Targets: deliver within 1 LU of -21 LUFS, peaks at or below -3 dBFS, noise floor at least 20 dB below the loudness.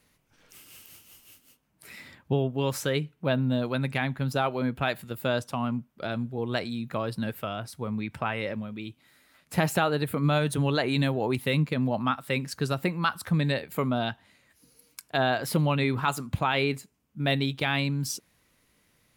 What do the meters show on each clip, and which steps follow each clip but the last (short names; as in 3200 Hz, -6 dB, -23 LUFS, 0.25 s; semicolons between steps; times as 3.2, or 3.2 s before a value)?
loudness -28.5 LUFS; peak -9.5 dBFS; loudness target -21.0 LUFS
-> gain +7.5 dB; limiter -3 dBFS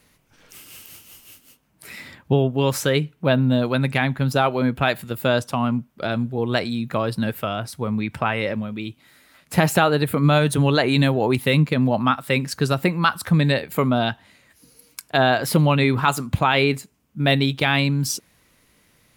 loudness -21.0 LUFS; peak -3.0 dBFS; noise floor -61 dBFS